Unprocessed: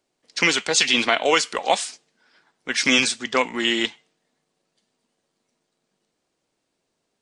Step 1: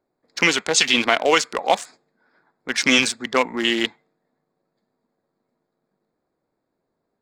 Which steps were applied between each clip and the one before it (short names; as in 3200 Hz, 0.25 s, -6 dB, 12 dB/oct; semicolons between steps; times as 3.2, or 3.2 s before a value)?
Wiener smoothing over 15 samples; gain +2 dB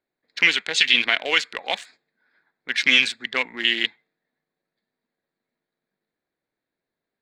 band shelf 2600 Hz +12.5 dB; gain -11 dB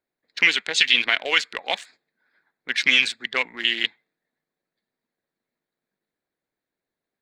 harmonic-percussive split percussive +5 dB; gain -4.5 dB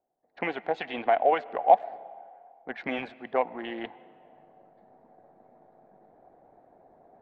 reverse; upward compressor, threshold -40 dBFS; reverse; synth low-pass 740 Hz, resonance Q 5.6; digital reverb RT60 2.3 s, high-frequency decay 0.65×, pre-delay 70 ms, DRR 20 dB